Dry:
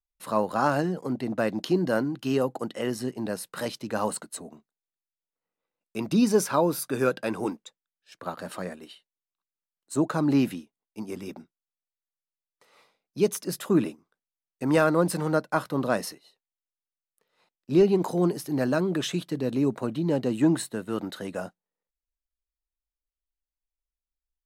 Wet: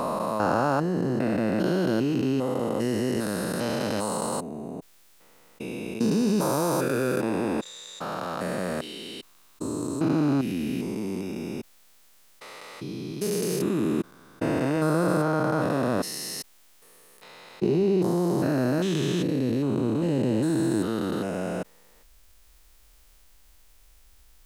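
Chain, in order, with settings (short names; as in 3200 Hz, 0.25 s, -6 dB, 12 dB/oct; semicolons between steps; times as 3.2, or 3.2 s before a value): stepped spectrum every 0.4 s; fast leveller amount 50%; gain +2.5 dB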